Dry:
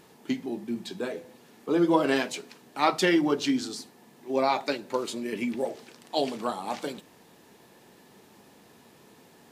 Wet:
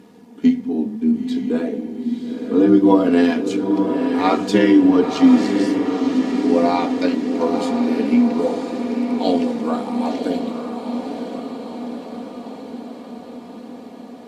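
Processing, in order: treble shelf 9.9 kHz -9 dB; granular stretch 1.5×, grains 25 ms; high-pass 85 Hz; peaking EQ 210 Hz +13 dB 2.4 oct; echo that smears into a reverb 962 ms, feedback 64%, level -6 dB; trim +2 dB

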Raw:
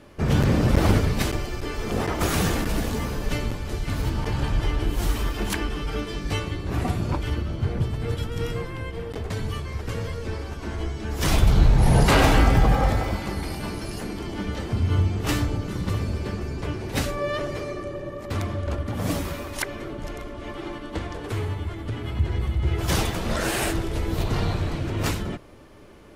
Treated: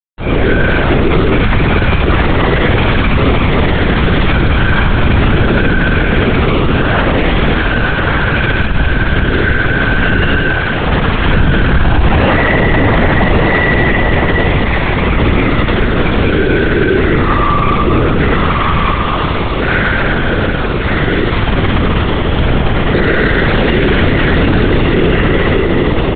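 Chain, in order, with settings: low-pass 2.8 kHz; bass shelf 150 Hz +6 dB; inharmonic resonator 380 Hz, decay 0.6 s, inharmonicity 0.002; companded quantiser 4-bit; on a send: delay 1135 ms -6 dB; on the sum: spring tank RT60 3.7 s, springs 53 ms, chirp 50 ms, DRR -10 dB; LPC vocoder at 8 kHz whisper; loudness maximiser +27.5 dB; trim -1 dB

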